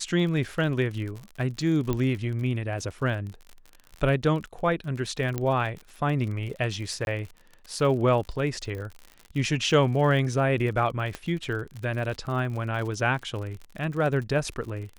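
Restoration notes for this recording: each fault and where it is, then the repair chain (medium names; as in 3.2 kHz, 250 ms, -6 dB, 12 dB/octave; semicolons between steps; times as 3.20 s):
crackle 50 per s -34 dBFS
1.93 s: pop -15 dBFS
5.38 s: pop -15 dBFS
7.05–7.07 s: dropout 21 ms
11.15 s: pop -18 dBFS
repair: de-click; interpolate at 7.05 s, 21 ms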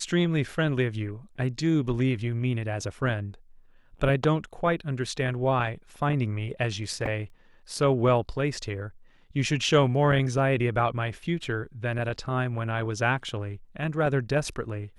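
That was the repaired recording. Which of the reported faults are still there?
5.38 s: pop
11.15 s: pop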